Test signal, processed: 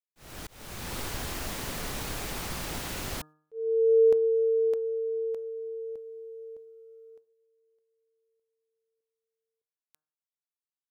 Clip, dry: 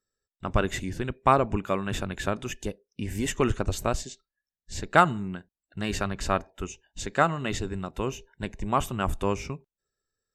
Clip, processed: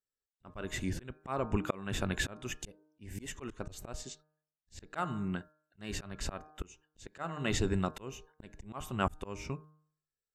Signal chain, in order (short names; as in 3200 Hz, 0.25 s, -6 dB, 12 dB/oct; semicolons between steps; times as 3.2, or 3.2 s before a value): gate -51 dBFS, range -16 dB; de-hum 153.5 Hz, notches 11; auto swell 0.507 s; gain +2 dB